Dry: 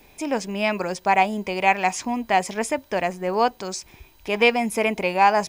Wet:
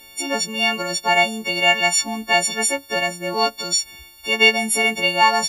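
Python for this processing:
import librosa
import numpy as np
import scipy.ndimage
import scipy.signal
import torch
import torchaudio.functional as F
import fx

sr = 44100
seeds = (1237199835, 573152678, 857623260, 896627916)

y = fx.freq_snap(x, sr, grid_st=4)
y = fx.peak_eq(y, sr, hz=3600.0, db=6.5, octaves=1.4)
y = y * librosa.db_to_amplitude(-1.5)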